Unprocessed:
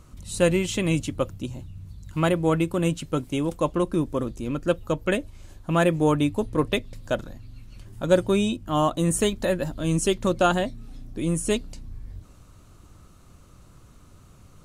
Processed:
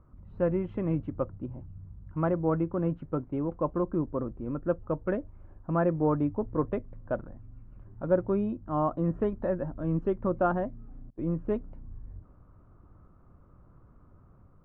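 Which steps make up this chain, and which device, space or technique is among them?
11.10–11.65 s: gate -31 dBFS, range -25 dB; action camera in a waterproof case (low-pass 1.4 kHz 24 dB/octave; level rider gain up to 3 dB; trim -8 dB; AAC 64 kbps 48 kHz)

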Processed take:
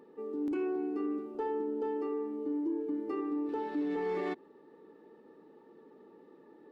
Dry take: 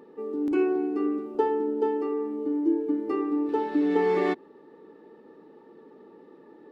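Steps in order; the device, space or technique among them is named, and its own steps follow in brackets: soft clipper into limiter (saturation -12 dBFS, distortion -28 dB; peak limiter -21 dBFS, peak gain reduction 7 dB); trim -6 dB

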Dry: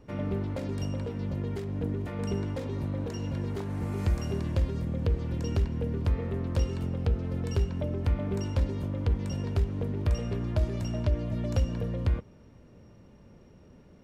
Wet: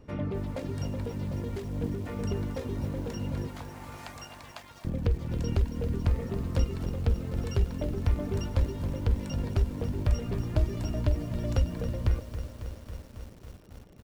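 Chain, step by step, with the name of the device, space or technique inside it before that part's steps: octave pedal (harmony voices -12 st -6 dB); 3.48–4.85 s: steep high-pass 640 Hz 96 dB/octave; reverb removal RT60 0.59 s; bit-crushed delay 274 ms, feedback 80%, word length 8-bit, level -11 dB

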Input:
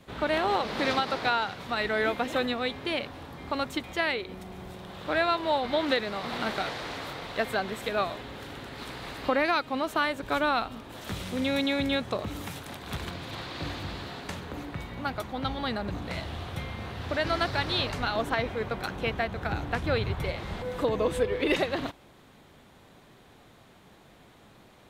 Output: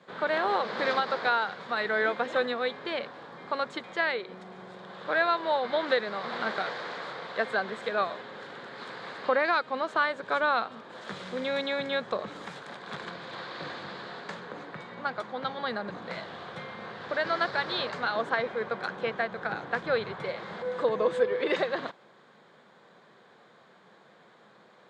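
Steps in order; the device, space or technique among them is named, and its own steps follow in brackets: television speaker (cabinet simulation 170–6600 Hz, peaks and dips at 280 Hz -9 dB, 500 Hz +5 dB, 1.1 kHz +4 dB, 1.6 kHz +6 dB, 2.7 kHz -6 dB, 5.8 kHz -7 dB); trim -2 dB

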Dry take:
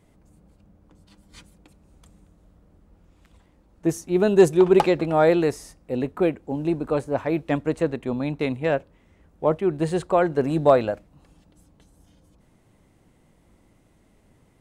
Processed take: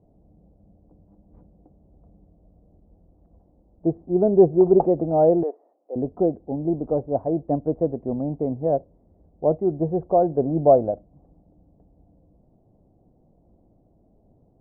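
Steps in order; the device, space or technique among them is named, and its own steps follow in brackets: under water (low-pass 680 Hz 24 dB/octave; peaking EQ 710 Hz +7.5 dB 0.37 oct); 5.43–5.96 s: Bessel high-pass 560 Hz, order 8

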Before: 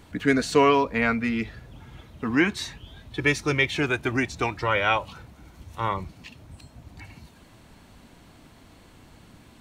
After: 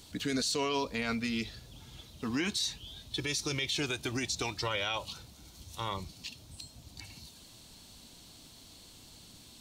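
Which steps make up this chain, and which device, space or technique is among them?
over-bright horn tweeter (resonant high shelf 2.8 kHz +13 dB, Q 1.5; peak limiter -16 dBFS, peak gain reduction 10.5 dB); trim -7 dB

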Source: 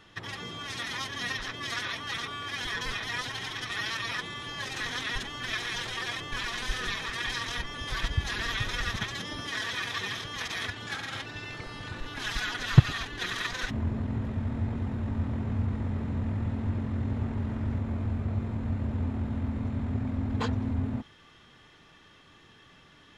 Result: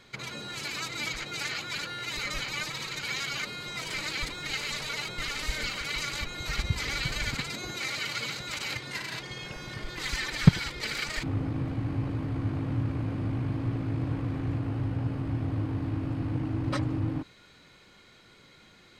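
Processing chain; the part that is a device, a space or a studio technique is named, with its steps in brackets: nightcore (tape speed +22%)

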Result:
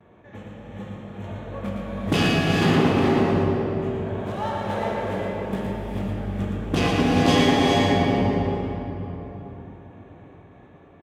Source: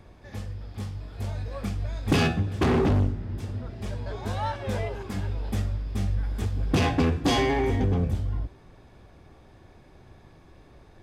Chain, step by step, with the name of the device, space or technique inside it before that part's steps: local Wiener filter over 9 samples; gate with hold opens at -43 dBFS; PA in a hall (high-pass 130 Hz 12 dB/octave; peaking EQ 3.1 kHz +4.5 dB 0.2 oct; delay 116 ms -5 dB; reverberation RT60 3.7 s, pre-delay 3 ms, DRR -1 dB); gated-style reverb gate 460 ms rising, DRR 2 dB

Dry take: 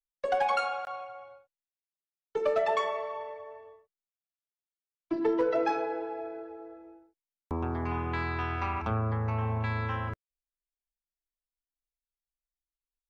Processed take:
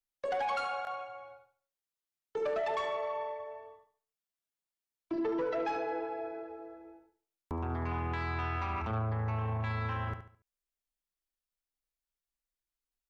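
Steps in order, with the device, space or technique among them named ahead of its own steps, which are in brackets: feedback delay 71 ms, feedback 35%, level -11 dB; soft clipper into limiter (saturation -22.5 dBFS, distortion -18 dB; peak limiter -27.5 dBFS, peak gain reduction 4.5 dB)

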